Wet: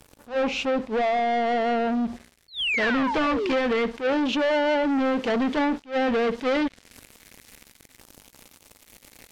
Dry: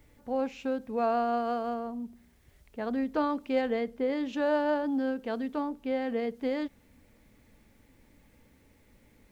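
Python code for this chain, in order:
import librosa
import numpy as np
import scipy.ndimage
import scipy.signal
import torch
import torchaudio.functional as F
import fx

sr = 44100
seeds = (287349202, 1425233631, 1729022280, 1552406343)

y = fx.spec_paint(x, sr, seeds[0], shape='fall', start_s=2.48, length_s=1.06, low_hz=310.0, high_hz=4500.0, level_db=-39.0)
y = fx.low_shelf(y, sr, hz=270.0, db=-7.5)
y = fx.rider(y, sr, range_db=3, speed_s=0.5)
y = fx.filter_lfo_notch(y, sr, shape='saw_down', hz=0.25, low_hz=580.0, high_hz=2100.0, q=2.4)
y = fx.leveller(y, sr, passes=5)
y = fx.high_shelf(y, sr, hz=2600.0, db=fx.steps((0.0, 2.0), (2.81, 9.5)))
y = fx.env_lowpass_down(y, sr, base_hz=2700.0, full_db=-20.5)
y = fx.attack_slew(y, sr, db_per_s=260.0)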